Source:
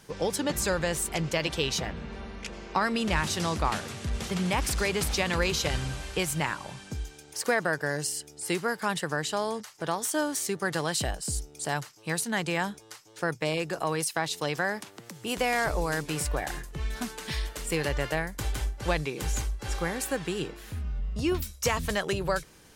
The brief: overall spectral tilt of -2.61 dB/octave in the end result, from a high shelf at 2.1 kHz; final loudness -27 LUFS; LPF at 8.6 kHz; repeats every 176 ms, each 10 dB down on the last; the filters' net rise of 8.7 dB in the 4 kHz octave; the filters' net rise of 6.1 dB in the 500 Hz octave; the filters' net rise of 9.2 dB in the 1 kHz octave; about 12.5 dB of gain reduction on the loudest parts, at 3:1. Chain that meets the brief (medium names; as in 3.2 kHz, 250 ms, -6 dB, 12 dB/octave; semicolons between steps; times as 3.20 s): low-pass 8.6 kHz; peaking EQ 500 Hz +4.5 dB; peaking EQ 1 kHz +8.5 dB; treble shelf 2.1 kHz +7 dB; peaking EQ 4 kHz +4 dB; compression 3:1, threshold -30 dBFS; feedback delay 176 ms, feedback 32%, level -10 dB; trim +4.5 dB